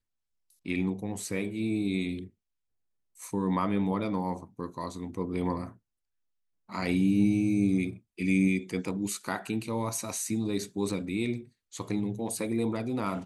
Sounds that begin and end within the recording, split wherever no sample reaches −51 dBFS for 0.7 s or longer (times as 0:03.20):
0:03.17–0:05.76